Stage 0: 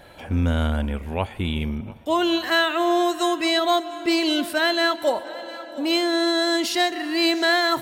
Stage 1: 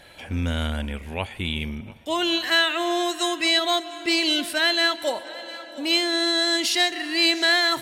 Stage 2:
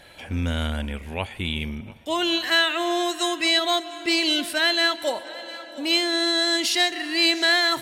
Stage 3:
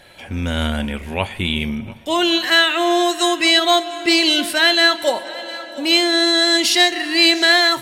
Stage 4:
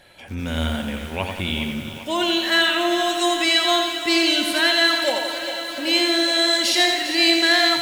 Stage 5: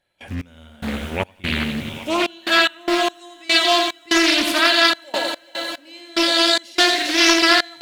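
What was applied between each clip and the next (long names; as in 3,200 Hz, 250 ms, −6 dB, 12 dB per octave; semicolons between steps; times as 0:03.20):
flat-topped bell 4,500 Hz +8 dB 3 octaves; level −4.5 dB
no processing that can be heard
convolution reverb RT60 0.30 s, pre-delay 5 ms, DRR 12 dB; automatic gain control gain up to 5 dB; level +2 dB
feedback echo with a high-pass in the loop 400 ms, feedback 78%, high-pass 210 Hz, level −12 dB; feedback echo at a low word length 87 ms, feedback 55%, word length 6 bits, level −5 dB; level −5 dB
gate pattern ".x..xx.xxxx.x" 73 BPM −24 dB; highs frequency-modulated by the lows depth 0.43 ms; level +2.5 dB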